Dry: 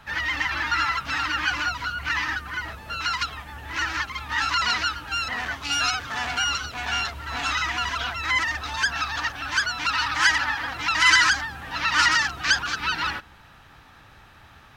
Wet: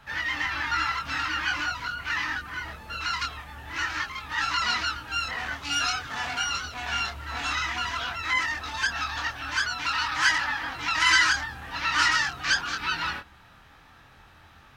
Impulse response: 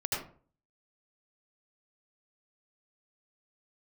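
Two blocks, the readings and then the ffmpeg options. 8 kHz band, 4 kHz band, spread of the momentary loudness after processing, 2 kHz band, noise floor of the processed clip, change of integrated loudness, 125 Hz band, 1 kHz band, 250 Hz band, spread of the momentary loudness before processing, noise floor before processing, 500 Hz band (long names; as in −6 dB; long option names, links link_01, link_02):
−3.0 dB, −3.0 dB, 9 LU, −3.0 dB, −54 dBFS, −3.0 dB, −3.5 dB, −3.0 dB, −3.0 dB, 10 LU, −50 dBFS, −3.0 dB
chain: -af "flanger=delay=22.5:depth=3.3:speed=0.48"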